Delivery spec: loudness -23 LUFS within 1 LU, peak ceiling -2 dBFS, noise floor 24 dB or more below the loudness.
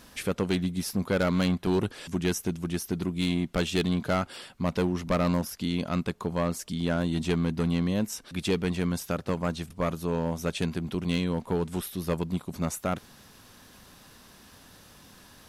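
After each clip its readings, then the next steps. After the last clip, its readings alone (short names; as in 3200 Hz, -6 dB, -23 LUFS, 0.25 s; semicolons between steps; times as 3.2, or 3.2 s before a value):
clipped 1.5%; flat tops at -19.5 dBFS; loudness -29.0 LUFS; peak -19.5 dBFS; loudness target -23.0 LUFS
-> clip repair -19.5 dBFS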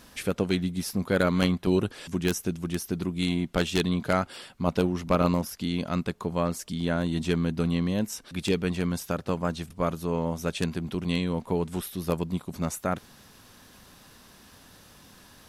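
clipped 0.0%; loudness -28.5 LUFS; peak -10.5 dBFS; loudness target -23.0 LUFS
-> gain +5.5 dB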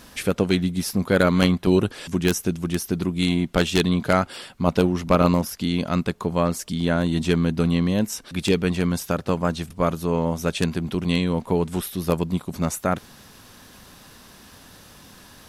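loudness -23.0 LUFS; peak -5.0 dBFS; noise floor -48 dBFS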